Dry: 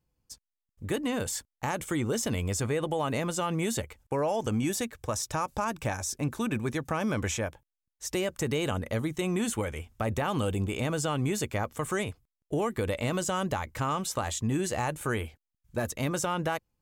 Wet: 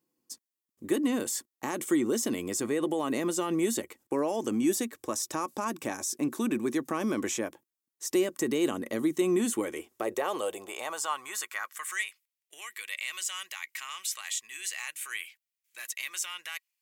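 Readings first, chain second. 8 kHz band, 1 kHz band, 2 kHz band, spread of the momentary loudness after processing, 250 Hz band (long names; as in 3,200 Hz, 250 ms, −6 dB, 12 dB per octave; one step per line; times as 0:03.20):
+1.5 dB, −4.0 dB, −0.5 dB, 11 LU, +1.5 dB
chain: high-shelf EQ 5,200 Hz +10 dB
in parallel at −2.5 dB: brickwall limiter −25 dBFS, peak gain reduction 11.5 dB
on the sum: high-pass filter sweep 260 Hz → 2,300 Hz, 0:09.54–0:12.15
hollow resonant body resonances 350/1,100/1,900 Hz, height 8 dB
level −8 dB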